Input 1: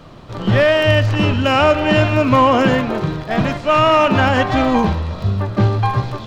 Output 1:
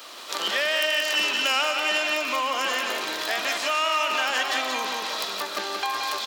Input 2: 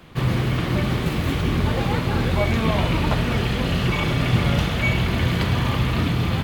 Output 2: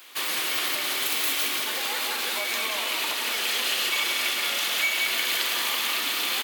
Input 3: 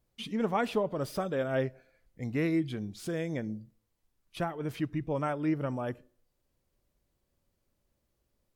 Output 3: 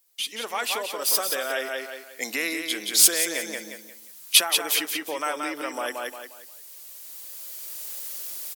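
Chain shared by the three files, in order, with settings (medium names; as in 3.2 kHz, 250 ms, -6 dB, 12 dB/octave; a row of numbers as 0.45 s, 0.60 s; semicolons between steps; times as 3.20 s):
recorder AGC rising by 7.8 dB/s; in parallel at 0 dB: peak limiter -12.5 dBFS; on the sum: high-pass 270 Hz 24 dB/octave; on a send: feedback delay 177 ms, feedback 30%, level -5.5 dB; on the sum: compression 2.5:1, threshold -19 dBFS; differentiator; normalise loudness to -24 LUFS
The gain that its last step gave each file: +9.5 dB, +6.5 dB, +11.0 dB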